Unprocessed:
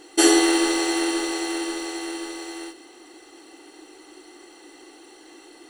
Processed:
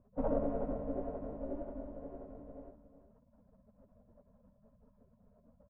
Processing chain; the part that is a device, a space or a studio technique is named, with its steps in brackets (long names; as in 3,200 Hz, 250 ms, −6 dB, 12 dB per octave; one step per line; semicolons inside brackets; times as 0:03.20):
gate on every frequency bin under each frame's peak −25 dB weak
0:01.40–0:01.91: comb filter 3.4 ms, depth 54%
under water (low-pass filter 570 Hz 24 dB per octave; parametric band 310 Hz +7 dB 0.54 octaves)
single-tap delay 365 ms −12 dB
level +11.5 dB